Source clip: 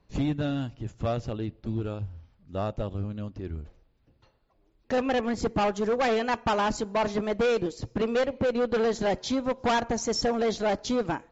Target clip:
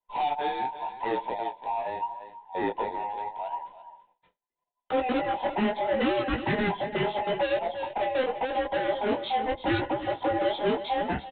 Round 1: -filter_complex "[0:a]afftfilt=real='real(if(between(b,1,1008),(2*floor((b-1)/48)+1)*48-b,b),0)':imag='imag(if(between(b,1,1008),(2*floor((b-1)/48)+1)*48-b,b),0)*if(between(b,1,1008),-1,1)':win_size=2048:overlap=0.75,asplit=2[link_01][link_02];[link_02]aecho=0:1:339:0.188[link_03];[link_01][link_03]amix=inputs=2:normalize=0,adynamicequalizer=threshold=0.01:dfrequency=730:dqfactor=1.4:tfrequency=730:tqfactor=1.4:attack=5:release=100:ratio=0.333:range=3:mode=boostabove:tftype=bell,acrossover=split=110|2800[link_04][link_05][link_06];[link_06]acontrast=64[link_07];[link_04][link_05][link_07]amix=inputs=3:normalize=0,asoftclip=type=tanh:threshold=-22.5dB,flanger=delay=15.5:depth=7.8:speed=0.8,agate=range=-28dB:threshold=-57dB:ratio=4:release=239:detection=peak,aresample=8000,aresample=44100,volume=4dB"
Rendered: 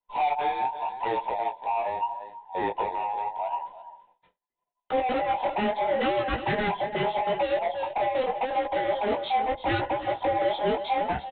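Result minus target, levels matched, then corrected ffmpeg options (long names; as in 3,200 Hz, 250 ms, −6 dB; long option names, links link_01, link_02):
250 Hz band −5.0 dB
-filter_complex "[0:a]afftfilt=real='real(if(between(b,1,1008),(2*floor((b-1)/48)+1)*48-b,b),0)':imag='imag(if(between(b,1,1008),(2*floor((b-1)/48)+1)*48-b,b),0)*if(between(b,1,1008),-1,1)':win_size=2048:overlap=0.75,asplit=2[link_01][link_02];[link_02]aecho=0:1:339:0.188[link_03];[link_01][link_03]amix=inputs=2:normalize=0,adynamicequalizer=threshold=0.01:dfrequency=270:dqfactor=1.4:tfrequency=270:tqfactor=1.4:attack=5:release=100:ratio=0.333:range=3:mode=boostabove:tftype=bell,acrossover=split=110|2800[link_04][link_05][link_06];[link_06]acontrast=64[link_07];[link_04][link_05][link_07]amix=inputs=3:normalize=0,asoftclip=type=tanh:threshold=-22.5dB,flanger=delay=15.5:depth=7.8:speed=0.8,agate=range=-28dB:threshold=-57dB:ratio=4:release=239:detection=peak,aresample=8000,aresample=44100,volume=4dB"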